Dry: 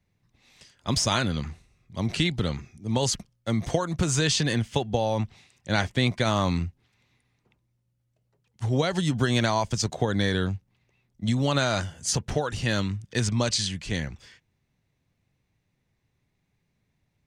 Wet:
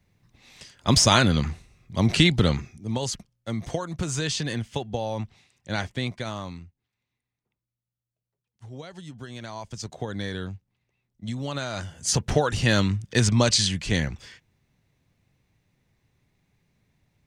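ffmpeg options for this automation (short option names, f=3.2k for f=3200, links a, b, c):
-af "volume=27.5dB,afade=t=out:st=2.52:d=0.47:silence=0.298538,afade=t=out:st=5.85:d=0.79:silence=0.251189,afade=t=in:st=9.39:d=0.63:silence=0.354813,afade=t=in:st=11.73:d=0.59:silence=0.251189"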